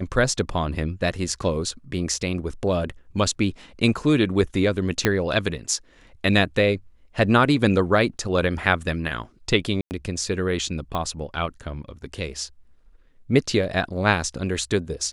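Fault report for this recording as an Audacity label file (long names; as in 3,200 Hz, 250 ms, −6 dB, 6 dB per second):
5.050000	5.050000	click −4 dBFS
9.810000	9.910000	drop-out 99 ms
10.950000	10.950000	click −15 dBFS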